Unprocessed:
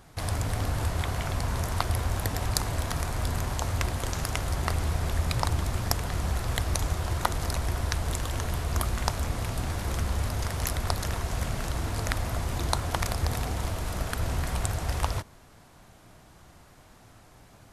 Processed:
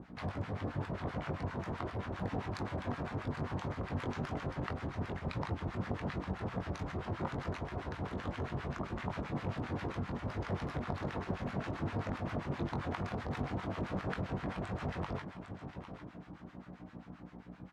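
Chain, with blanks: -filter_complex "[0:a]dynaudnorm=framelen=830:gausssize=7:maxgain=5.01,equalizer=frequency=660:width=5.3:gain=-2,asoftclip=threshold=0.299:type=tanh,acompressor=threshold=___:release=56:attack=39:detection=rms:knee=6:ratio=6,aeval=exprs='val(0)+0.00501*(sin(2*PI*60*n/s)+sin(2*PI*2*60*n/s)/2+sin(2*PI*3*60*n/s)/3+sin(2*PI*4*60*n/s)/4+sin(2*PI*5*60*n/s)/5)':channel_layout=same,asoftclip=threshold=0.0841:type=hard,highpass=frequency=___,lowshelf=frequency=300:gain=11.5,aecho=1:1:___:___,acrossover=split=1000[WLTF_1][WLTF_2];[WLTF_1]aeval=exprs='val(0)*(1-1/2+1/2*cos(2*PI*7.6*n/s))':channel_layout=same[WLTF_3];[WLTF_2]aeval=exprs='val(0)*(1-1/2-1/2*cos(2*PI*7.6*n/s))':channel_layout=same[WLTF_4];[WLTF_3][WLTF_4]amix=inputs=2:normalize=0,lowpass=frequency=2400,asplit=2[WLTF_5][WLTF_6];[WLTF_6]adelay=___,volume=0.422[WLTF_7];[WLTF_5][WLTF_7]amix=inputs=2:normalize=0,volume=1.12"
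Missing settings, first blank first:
0.0224, 210, 806, 0.299, 21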